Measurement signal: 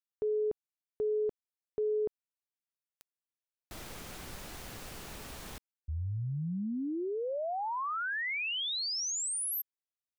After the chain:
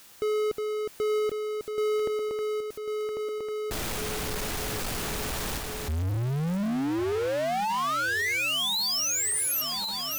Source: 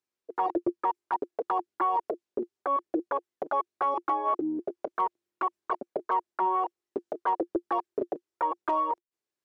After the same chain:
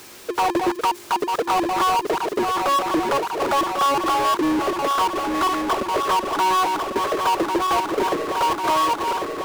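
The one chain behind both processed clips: backward echo that repeats 548 ms, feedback 66%, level -11 dB; power-law waveshaper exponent 0.35; trim +1.5 dB

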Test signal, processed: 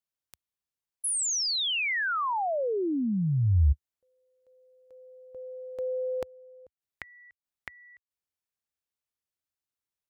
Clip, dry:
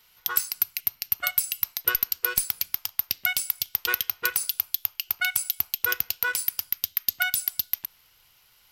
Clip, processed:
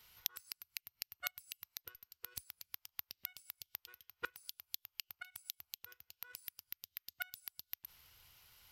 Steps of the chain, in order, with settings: inverted gate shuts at -16 dBFS, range -30 dB; peaking EQ 75 Hz +9 dB 1.3 oct; trim -4.5 dB

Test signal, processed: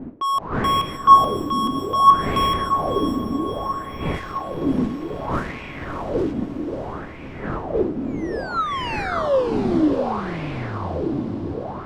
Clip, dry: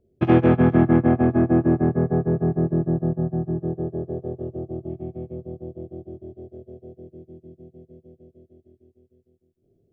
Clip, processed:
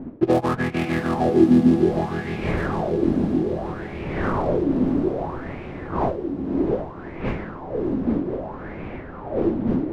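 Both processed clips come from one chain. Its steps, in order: dead-time distortion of 0.18 ms; wind noise 370 Hz -25 dBFS; dynamic bell 1.1 kHz, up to +6 dB, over -36 dBFS, Q 6.6; echo that smears into a reverb 585 ms, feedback 72%, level -13.5 dB; level-controlled noise filter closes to 2 kHz, open at -10 dBFS; on a send: echo that smears into a reverb 607 ms, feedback 58%, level -5.5 dB; on the sum: sweeping bell 0.62 Hz 240–2400 Hz +17 dB; trim -8.5 dB

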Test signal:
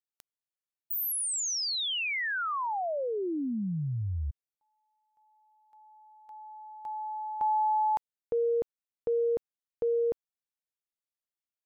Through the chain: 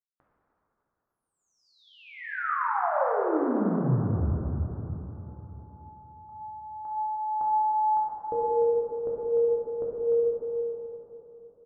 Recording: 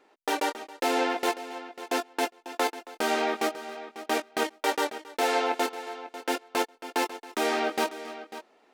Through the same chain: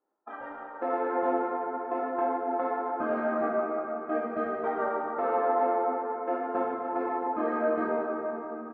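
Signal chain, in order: spectral noise reduction 21 dB; Chebyshev low-pass 1.3 kHz, order 3; compression, threshold -30 dBFS; on a send: feedback delay 302 ms, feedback 55%, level -15.5 dB; on the sum: plate-style reverb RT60 3.8 s, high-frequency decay 0.45×, DRR -6 dB

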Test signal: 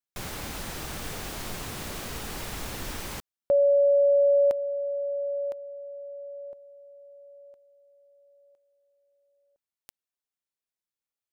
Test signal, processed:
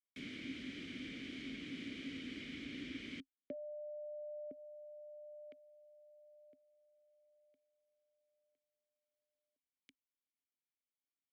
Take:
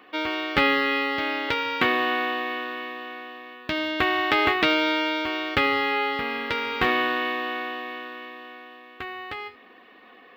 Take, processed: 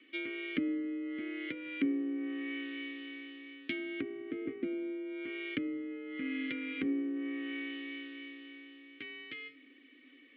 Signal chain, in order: frequency shift +32 Hz; low-pass that closes with the level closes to 570 Hz, closed at -20 dBFS; vowel filter i; trim +3.5 dB

